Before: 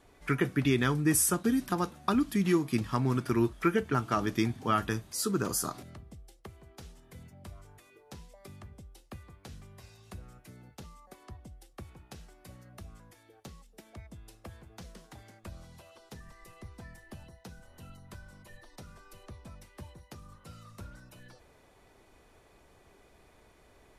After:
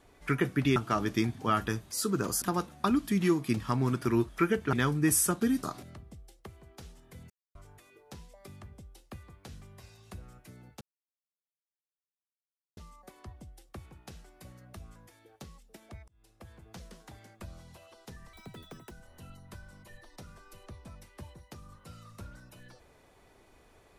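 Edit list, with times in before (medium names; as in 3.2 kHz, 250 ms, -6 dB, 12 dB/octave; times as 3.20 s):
0.76–1.66 s: swap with 3.97–5.63 s
7.30–7.55 s: mute
10.81 s: insert silence 1.96 s
14.12–14.71 s: fade in
16.37–17.51 s: speed 196%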